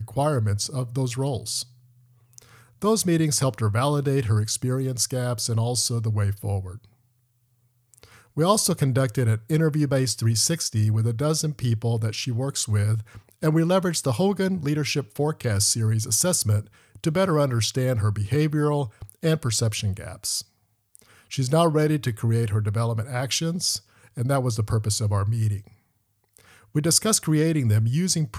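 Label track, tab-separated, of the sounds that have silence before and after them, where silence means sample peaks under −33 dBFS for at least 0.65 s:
2.380000	6.760000	sound
7.940000	25.600000	sound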